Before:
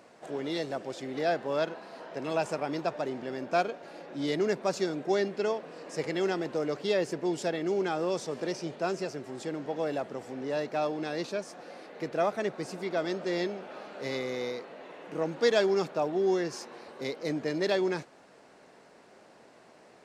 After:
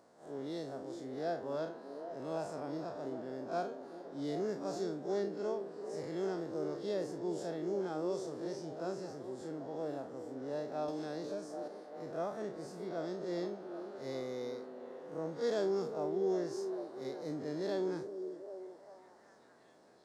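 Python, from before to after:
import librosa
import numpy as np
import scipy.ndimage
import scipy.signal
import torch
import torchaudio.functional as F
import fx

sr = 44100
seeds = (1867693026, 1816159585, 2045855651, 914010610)

y = fx.spec_blur(x, sr, span_ms=86.0)
y = fx.peak_eq(y, sr, hz=2500.0, db=-13.5, octaves=0.81)
y = fx.echo_stepped(y, sr, ms=393, hz=330.0, octaves=0.7, feedback_pct=70, wet_db=-6)
y = fx.band_squash(y, sr, depth_pct=100, at=(10.88, 11.68))
y = y * librosa.db_to_amplitude(-6.0)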